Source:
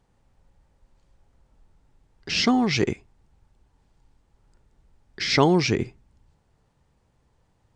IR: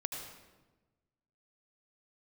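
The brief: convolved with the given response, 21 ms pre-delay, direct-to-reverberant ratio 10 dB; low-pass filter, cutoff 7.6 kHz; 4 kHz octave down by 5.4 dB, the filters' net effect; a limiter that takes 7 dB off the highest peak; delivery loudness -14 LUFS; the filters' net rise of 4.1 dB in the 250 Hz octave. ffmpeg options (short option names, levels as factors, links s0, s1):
-filter_complex "[0:a]lowpass=7600,equalizer=f=250:t=o:g=5,equalizer=f=4000:t=o:g=-7,alimiter=limit=0.266:level=0:latency=1,asplit=2[s0][s1];[1:a]atrim=start_sample=2205,adelay=21[s2];[s1][s2]afir=irnorm=-1:irlink=0,volume=0.282[s3];[s0][s3]amix=inputs=2:normalize=0,volume=2.66"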